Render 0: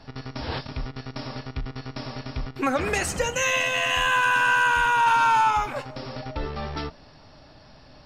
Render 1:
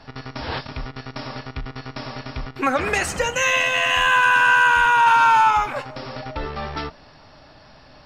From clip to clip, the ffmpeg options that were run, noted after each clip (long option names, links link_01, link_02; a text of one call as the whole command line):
ffmpeg -i in.wav -af "equalizer=frequency=1500:width=0.43:gain=5.5" out.wav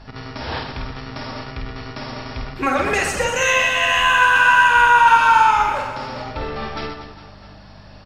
ffmpeg -i in.wav -filter_complex "[0:a]aeval=exprs='val(0)+0.00794*(sin(2*PI*50*n/s)+sin(2*PI*2*50*n/s)/2+sin(2*PI*3*50*n/s)/3+sin(2*PI*4*50*n/s)/4+sin(2*PI*5*50*n/s)/5)':channel_layout=same,asplit=2[link_01][link_02];[link_02]aecho=0:1:50|125|237.5|406.2|659.4:0.631|0.398|0.251|0.158|0.1[link_03];[link_01][link_03]amix=inputs=2:normalize=0" out.wav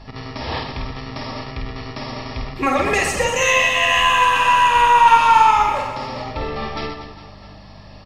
ffmpeg -i in.wav -af "aeval=exprs='0.841*(cos(1*acos(clip(val(0)/0.841,-1,1)))-cos(1*PI/2))+0.0531*(cos(2*acos(clip(val(0)/0.841,-1,1)))-cos(2*PI/2))':channel_layout=same,asuperstop=centerf=1500:order=4:qfactor=5.7,volume=1.5dB" out.wav